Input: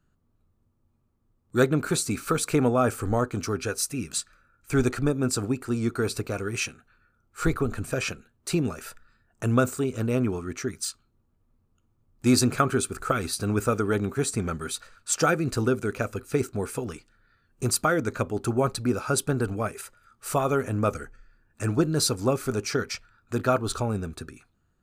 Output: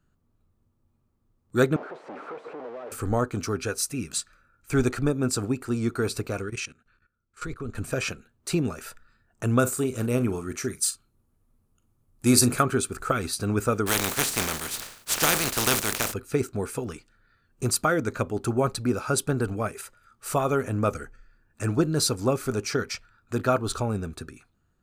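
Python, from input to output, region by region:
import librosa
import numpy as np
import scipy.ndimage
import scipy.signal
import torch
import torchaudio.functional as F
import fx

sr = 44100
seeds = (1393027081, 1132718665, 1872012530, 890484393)

y = fx.chain(x, sr, fx.clip_1bit(),
    fx.ladder_bandpass(hz=610.0, resonance_pct=35),
    fx.band_squash(depth_pct=100), at=(1.76, 2.92))
y = fx.chain(y, sr, fx.lowpass(hz=9200.0, slope=12),
    fx.peak_eq(hz=770.0, db=-7.5, octaves=0.62),
    fx.level_steps(step_db=16), at=(6.42, 7.75))
y = fx.chain(y, sr, fx.peak_eq(hz=11000.0, db=11.5, octaves=0.88),
    fx.doubler(ms=41.0, db=-13.0), at=(9.59, 12.63))
y = fx.spec_flatten(y, sr, power=0.28, at=(13.86, 16.12), fade=0.02)
y = fx.sustainer(y, sr, db_per_s=88.0, at=(13.86, 16.12), fade=0.02)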